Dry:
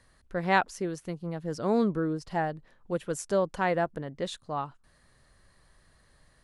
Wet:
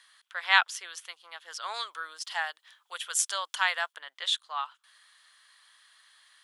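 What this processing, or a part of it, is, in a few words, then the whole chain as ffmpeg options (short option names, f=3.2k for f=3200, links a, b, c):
headphones lying on a table: -filter_complex "[0:a]highpass=f=1.1k:w=0.5412,highpass=f=1.1k:w=1.3066,equalizer=f=3.3k:t=o:w=0.39:g=12,asettb=1/sr,asplit=3[a][b][c];[a]atrim=end=1.744[d];[b]atrim=start=1.74:end=3.93,asetpts=PTS-STARTPTS,afade=t=in:d=0.004:c=qsin,afade=t=out:st=2.186:d=0.004:c=qsin,bass=f=250:g=-6,treble=f=4k:g=7[e];[c]atrim=start=3.926[f];[d][e]acrossfade=d=0.004:c1=hsin:c2=qsin[g];[g][f]acrossfade=d=0.004:c1=qsin:c2=hsin,volume=5.5dB"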